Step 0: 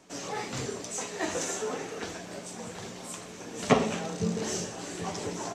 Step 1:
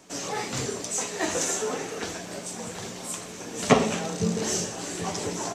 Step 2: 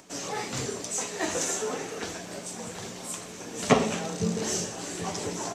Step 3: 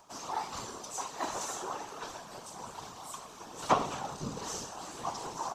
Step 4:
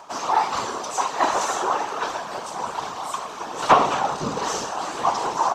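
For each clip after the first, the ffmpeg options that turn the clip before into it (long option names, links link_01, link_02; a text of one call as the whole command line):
ffmpeg -i in.wav -af "highshelf=frequency=6400:gain=6.5,volume=3.5dB" out.wav
ffmpeg -i in.wav -af "acompressor=mode=upward:threshold=-49dB:ratio=2.5,volume=-2dB" out.wav
ffmpeg -i in.wav -af "equalizer=frequency=125:width_type=o:width=1:gain=-9,equalizer=frequency=250:width_type=o:width=1:gain=-6,equalizer=frequency=500:width_type=o:width=1:gain=-8,equalizer=frequency=1000:width_type=o:width=1:gain=11,equalizer=frequency=2000:width_type=o:width=1:gain=-10,equalizer=frequency=8000:width_type=o:width=1:gain=-7,afftfilt=real='hypot(re,im)*cos(2*PI*random(0))':imag='hypot(re,im)*sin(2*PI*random(1))':win_size=512:overlap=0.75,volume=2dB" out.wav
ffmpeg -i in.wav -filter_complex "[0:a]asplit=2[link_01][link_02];[link_02]highpass=frequency=720:poles=1,volume=16dB,asoftclip=type=tanh:threshold=-11.5dB[link_03];[link_01][link_03]amix=inputs=2:normalize=0,lowpass=frequency=1800:poles=1,volume=-6dB,volume=8.5dB" out.wav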